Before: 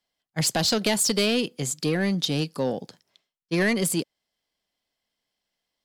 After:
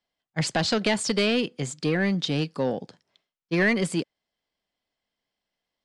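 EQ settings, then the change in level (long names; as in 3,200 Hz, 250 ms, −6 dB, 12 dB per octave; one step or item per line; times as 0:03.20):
Butterworth low-pass 9,900 Hz 48 dB per octave
dynamic equaliser 1,900 Hz, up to +4 dB, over −42 dBFS, Q 1.1
high-shelf EQ 5,300 Hz −11.5 dB
0.0 dB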